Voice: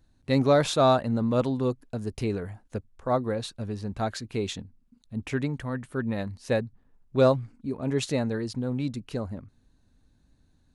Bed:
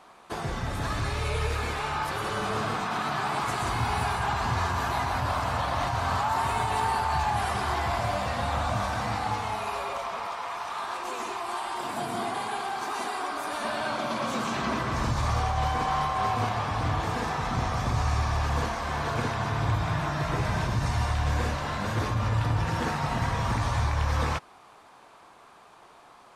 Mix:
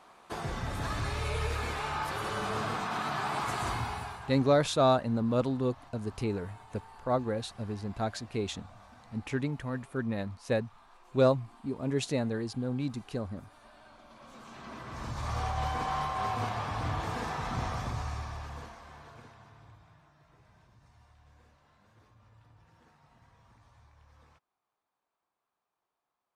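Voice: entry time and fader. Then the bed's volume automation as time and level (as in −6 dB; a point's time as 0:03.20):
4.00 s, −3.5 dB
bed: 0:03.71 −4 dB
0:04.63 −26 dB
0:14.04 −26 dB
0:15.46 −5.5 dB
0:17.69 −5.5 dB
0:20.14 −34.5 dB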